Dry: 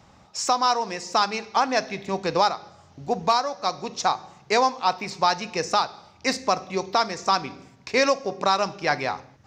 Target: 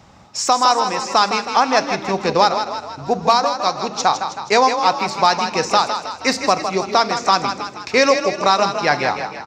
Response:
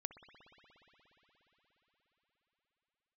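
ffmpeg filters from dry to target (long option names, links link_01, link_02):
-filter_complex "[0:a]asplit=7[link_01][link_02][link_03][link_04][link_05][link_06][link_07];[link_02]adelay=159,afreqshift=30,volume=-8dB[link_08];[link_03]adelay=318,afreqshift=60,volume=-13.5dB[link_09];[link_04]adelay=477,afreqshift=90,volume=-19dB[link_10];[link_05]adelay=636,afreqshift=120,volume=-24.5dB[link_11];[link_06]adelay=795,afreqshift=150,volume=-30.1dB[link_12];[link_07]adelay=954,afreqshift=180,volume=-35.6dB[link_13];[link_01][link_08][link_09][link_10][link_11][link_12][link_13]amix=inputs=7:normalize=0,volume=6dB"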